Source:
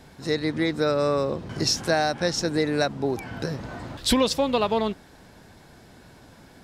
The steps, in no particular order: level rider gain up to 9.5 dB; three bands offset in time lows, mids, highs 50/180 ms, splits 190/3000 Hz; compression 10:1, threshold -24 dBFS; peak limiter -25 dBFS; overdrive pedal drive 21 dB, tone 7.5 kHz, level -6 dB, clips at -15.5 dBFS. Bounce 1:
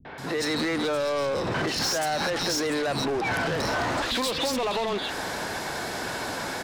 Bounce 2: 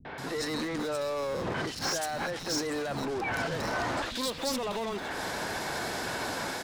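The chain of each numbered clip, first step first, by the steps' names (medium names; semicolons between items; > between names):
peak limiter > three bands offset in time > level rider > overdrive pedal > compression; level rider > overdrive pedal > compression > peak limiter > three bands offset in time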